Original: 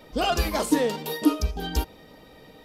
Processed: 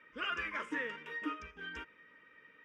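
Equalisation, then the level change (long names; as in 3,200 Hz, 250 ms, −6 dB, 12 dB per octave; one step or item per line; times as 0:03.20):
resonant band-pass 1,800 Hz, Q 1.3
high-frequency loss of the air 110 metres
phaser with its sweep stopped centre 1,800 Hz, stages 4
0.0 dB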